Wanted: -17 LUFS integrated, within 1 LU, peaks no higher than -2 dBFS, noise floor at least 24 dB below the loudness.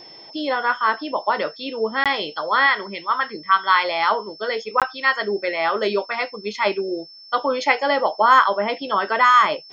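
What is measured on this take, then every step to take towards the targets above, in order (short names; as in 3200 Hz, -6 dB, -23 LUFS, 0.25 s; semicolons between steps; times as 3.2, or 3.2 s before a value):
dropouts 2; longest dropout 17 ms; steady tone 5300 Hz; tone level -41 dBFS; loudness -20.0 LUFS; peak -2.5 dBFS; loudness target -17.0 LUFS
-> interpolate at 2.04/4.8, 17 ms; notch 5300 Hz, Q 30; gain +3 dB; limiter -2 dBFS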